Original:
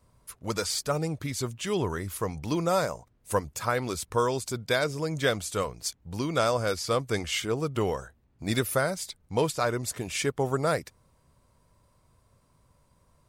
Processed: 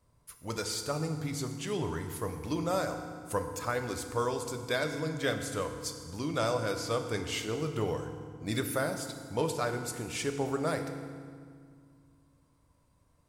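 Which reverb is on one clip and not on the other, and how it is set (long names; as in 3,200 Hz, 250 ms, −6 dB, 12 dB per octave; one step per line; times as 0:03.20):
feedback delay network reverb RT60 2 s, low-frequency decay 1.55×, high-frequency decay 0.75×, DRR 5.5 dB
level −6 dB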